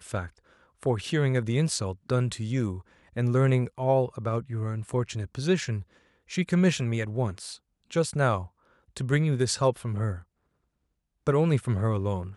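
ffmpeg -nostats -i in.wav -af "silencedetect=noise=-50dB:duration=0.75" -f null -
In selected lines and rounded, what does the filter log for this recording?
silence_start: 10.23
silence_end: 11.27 | silence_duration: 1.04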